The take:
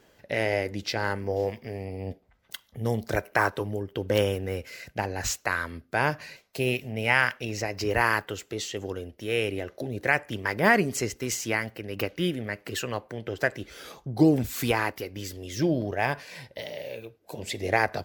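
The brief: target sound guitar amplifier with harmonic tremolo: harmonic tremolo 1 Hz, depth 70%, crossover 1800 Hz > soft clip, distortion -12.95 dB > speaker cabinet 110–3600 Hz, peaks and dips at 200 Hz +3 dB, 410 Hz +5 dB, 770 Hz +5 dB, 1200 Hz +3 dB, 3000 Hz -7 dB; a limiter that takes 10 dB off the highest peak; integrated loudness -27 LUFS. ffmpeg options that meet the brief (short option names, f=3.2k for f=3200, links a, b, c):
-filter_complex "[0:a]alimiter=limit=-16.5dB:level=0:latency=1,acrossover=split=1800[a][b];[a]aeval=exprs='val(0)*(1-0.7/2+0.7/2*cos(2*PI*1*n/s))':c=same[c];[b]aeval=exprs='val(0)*(1-0.7/2-0.7/2*cos(2*PI*1*n/s))':c=same[d];[c][d]amix=inputs=2:normalize=0,asoftclip=threshold=-25.5dB,highpass=110,equalizer=f=200:t=q:w=4:g=3,equalizer=f=410:t=q:w=4:g=5,equalizer=f=770:t=q:w=4:g=5,equalizer=f=1.2k:t=q:w=4:g=3,equalizer=f=3k:t=q:w=4:g=-7,lowpass=f=3.6k:w=0.5412,lowpass=f=3.6k:w=1.3066,volume=9dB"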